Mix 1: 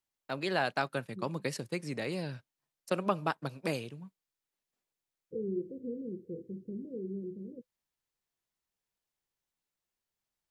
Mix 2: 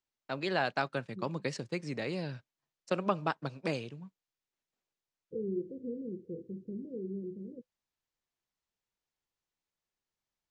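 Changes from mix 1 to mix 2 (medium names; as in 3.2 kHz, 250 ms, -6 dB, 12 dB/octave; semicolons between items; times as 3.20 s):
first voice: add resonant low-pass 7.5 kHz, resonance Q 1.5; master: add distance through air 81 m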